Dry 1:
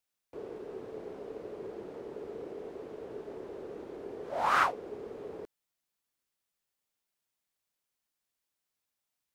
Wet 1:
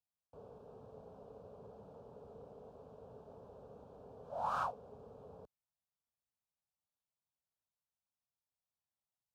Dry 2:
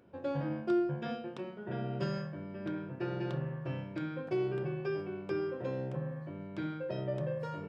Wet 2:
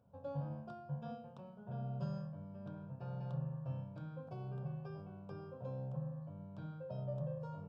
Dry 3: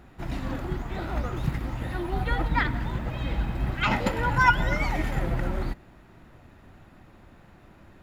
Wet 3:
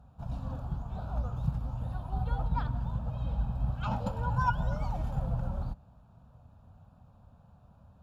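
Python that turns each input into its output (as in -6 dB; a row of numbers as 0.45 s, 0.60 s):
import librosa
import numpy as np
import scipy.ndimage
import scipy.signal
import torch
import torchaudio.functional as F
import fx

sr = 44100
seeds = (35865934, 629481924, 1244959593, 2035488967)

y = scipy.signal.sosfilt(scipy.signal.butter(2, 69.0, 'highpass', fs=sr, output='sos'), x)
y = fx.tilt_eq(y, sr, slope=-2.5)
y = fx.fixed_phaser(y, sr, hz=830.0, stages=4)
y = y * 10.0 ** (-7.5 / 20.0)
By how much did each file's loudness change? -10.5 LU, -8.0 LU, -6.5 LU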